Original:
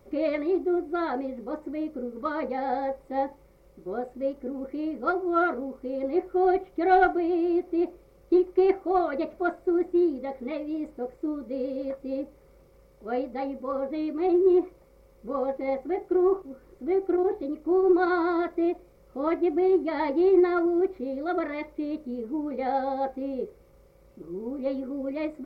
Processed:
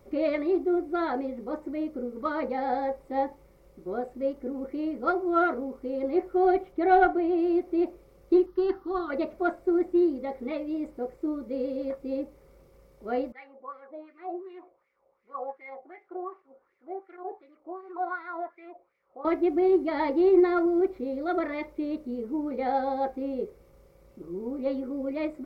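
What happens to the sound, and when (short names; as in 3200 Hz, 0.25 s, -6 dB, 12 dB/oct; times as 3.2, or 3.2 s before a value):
6.72–7.38 high shelf 3700 Hz -7 dB
8.46–9.1 fixed phaser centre 2300 Hz, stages 6
13.32–19.25 wah 2.7 Hz 660–2200 Hz, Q 3.7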